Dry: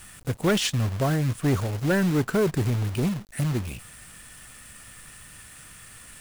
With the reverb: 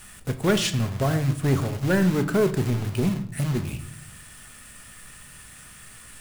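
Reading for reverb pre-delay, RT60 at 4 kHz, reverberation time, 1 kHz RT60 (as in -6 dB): 5 ms, 0.50 s, 0.65 s, 0.65 s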